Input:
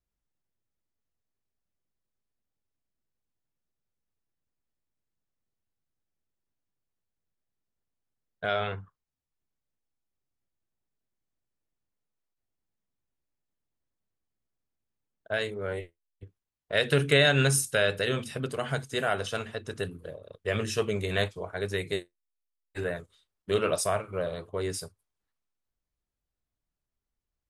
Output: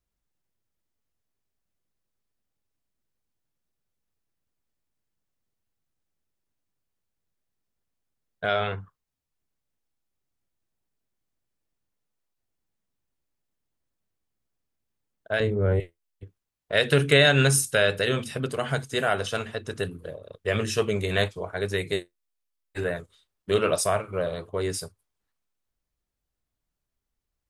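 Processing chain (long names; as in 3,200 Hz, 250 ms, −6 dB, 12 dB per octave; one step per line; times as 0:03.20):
0:15.40–0:15.80: spectral tilt −4 dB per octave
level +3.5 dB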